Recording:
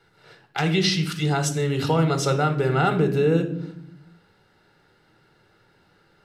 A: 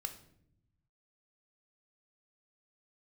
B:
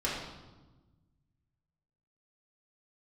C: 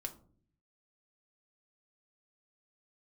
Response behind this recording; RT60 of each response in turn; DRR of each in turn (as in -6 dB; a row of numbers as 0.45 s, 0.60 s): A; 0.70 s, 1.2 s, no single decay rate; 6.0 dB, -8.0 dB, 4.0 dB